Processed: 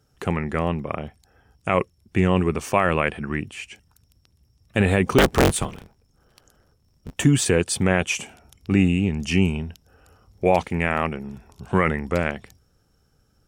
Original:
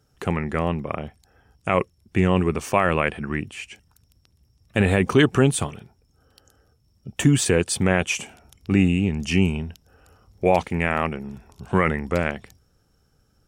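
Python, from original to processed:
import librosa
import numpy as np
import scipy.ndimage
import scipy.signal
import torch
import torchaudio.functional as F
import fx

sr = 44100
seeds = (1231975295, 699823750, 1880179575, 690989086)

y = fx.cycle_switch(x, sr, every=3, mode='inverted', at=(5.18, 7.16))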